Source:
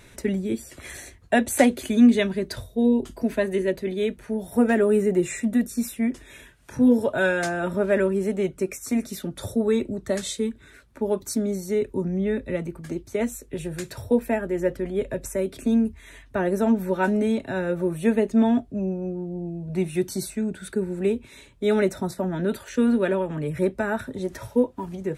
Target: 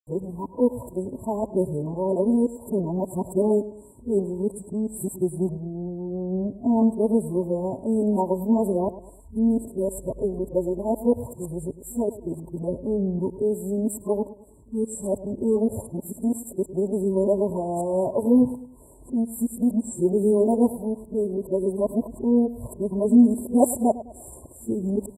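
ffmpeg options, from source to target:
-filter_complex "[0:a]areverse,afftfilt=real='re*(1-between(b*sr/4096,1100,7300))':imag='im*(1-between(b*sr/4096,1100,7300))':win_size=4096:overlap=0.75,asplit=2[a][b];[b]adelay=104,lowpass=f=3.9k:p=1,volume=-15.5dB,asplit=2[c][d];[d]adelay=104,lowpass=f=3.9k:p=1,volume=0.39,asplit=2[e][f];[f]adelay=104,lowpass=f=3.9k:p=1,volume=0.39[g];[a][c][e][g]amix=inputs=4:normalize=0"

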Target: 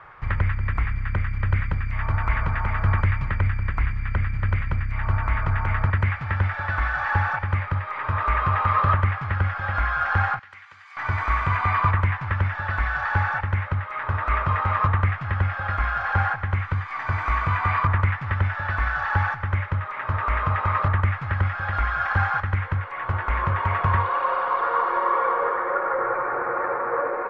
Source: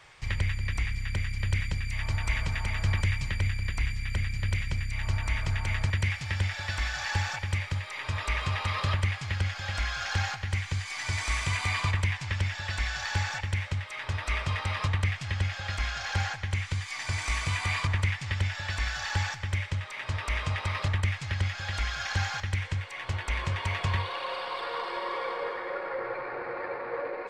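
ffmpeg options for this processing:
-filter_complex "[0:a]lowpass=f=1.3k:t=q:w=3,asettb=1/sr,asplit=3[a][b][c];[a]atrim=end=10.394[d];[b]atrim=start=10.39:end=10.97,asetpts=PTS-STARTPTS,afade=t=in:d=0.004:c=qsin,afade=t=out:st=0.576:d=0.004:c=qsin,aderivative[e];[c]atrim=start=10.966[f];[d][e]acrossfade=d=0.004:c1=hsin:c2=qsin[g];[g][f]acrossfade=d=0.004:c1=qsin:c2=hsin,volume=6dB"

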